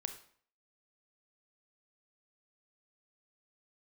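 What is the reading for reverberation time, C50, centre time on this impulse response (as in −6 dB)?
0.55 s, 10.0 dB, 11 ms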